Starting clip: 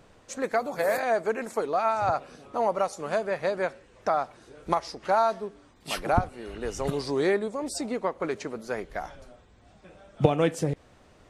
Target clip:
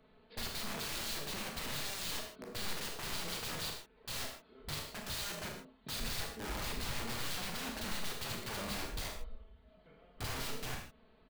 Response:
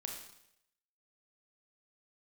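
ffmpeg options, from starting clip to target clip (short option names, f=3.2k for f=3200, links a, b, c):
-filter_complex "[0:a]afwtdn=0.0158,aecho=1:1:4.1:0.7,acompressor=threshold=-34dB:ratio=16,aresample=11025,aeval=exprs='(mod(35.5*val(0)+1,2)-1)/35.5':c=same,aresample=44100,asetrate=39289,aresample=44100,atempo=1.12246,acrossover=split=140|3800[a][b][c];[b]aeval=exprs='(mod(141*val(0)+1,2)-1)/141':c=same[d];[a][d][c]amix=inputs=3:normalize=0[e];[1:a]atrim=start_sample=2205,afade=t=out:st=0.21:d=0.01,atrim=end_sample=9702[f];[e][f]afir=irnorm=-1:irlink=0,volume=8dB"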